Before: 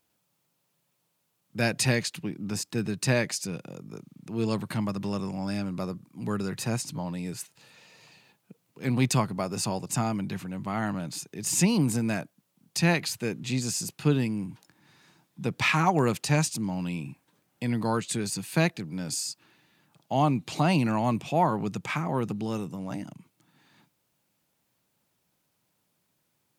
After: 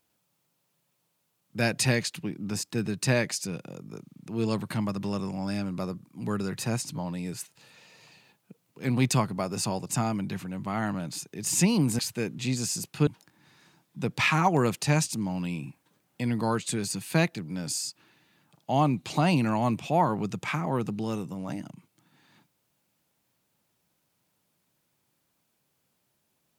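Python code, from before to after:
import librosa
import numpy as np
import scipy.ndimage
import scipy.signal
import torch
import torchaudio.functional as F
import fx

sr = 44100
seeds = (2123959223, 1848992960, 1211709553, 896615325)

y = fx.edit(x, sr, fx.cut(start_s=11.99, length_s=1.05),
    fx.cut(start_s=14.12, length_s=0.37), tone=tone)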